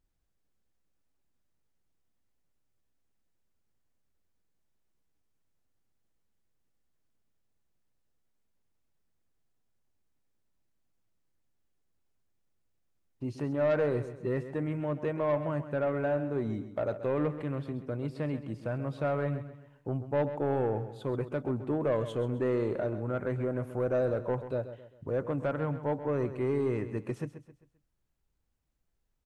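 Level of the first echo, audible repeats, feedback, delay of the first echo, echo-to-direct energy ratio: -12.0 dB, 3, 39%, 0.132 s, -11.5 dB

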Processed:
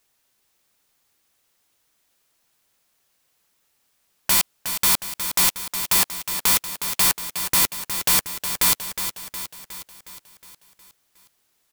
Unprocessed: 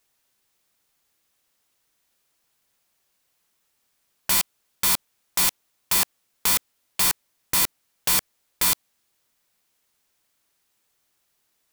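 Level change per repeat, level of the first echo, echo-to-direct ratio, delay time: -5.0 dB, -9.0 dB, -7.5 dB, 0.363 s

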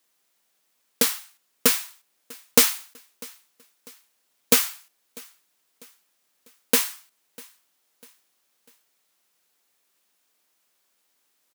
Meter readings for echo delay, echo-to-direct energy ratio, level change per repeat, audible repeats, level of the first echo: 0.647 s, -23.0 dB, -7.0 dB, 2, -24.0 dB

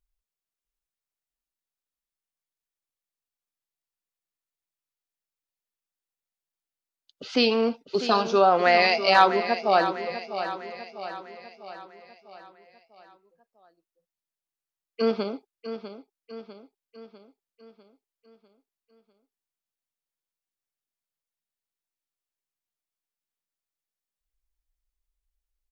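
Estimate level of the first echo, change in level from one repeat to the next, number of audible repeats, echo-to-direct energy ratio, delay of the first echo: -11.0 dB, -5.5 dB, 5, -9.5 dB, 0.649 s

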